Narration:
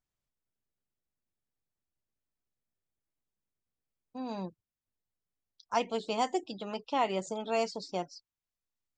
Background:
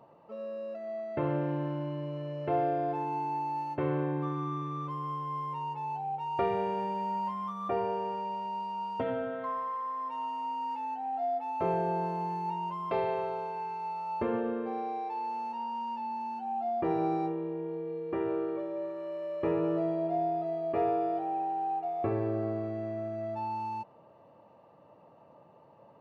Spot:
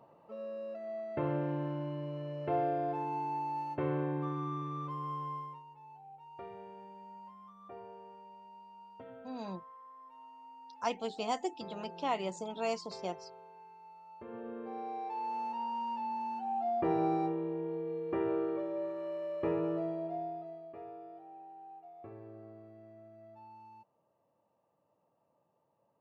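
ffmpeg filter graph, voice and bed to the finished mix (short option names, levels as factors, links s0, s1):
-filter_complex "[0:a]adelay=5100,volume=0.631[s0];[1:a]volume=5.01,afade=t=out:st=5.26:d=0.37:silence=0.177828,afade=t=in:st=14.24:d=1.18:silence=0.141254,afade=t=out:st=19.07:d=1.7:silence=0.125893[s1];[s0][s1]amix=inputs=2:normalize=0"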